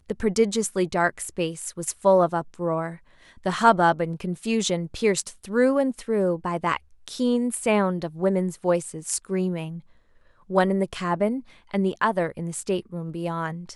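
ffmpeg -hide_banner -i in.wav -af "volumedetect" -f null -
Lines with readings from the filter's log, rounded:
mean_volume: -24.7 dB
max_volume: -4.2 dB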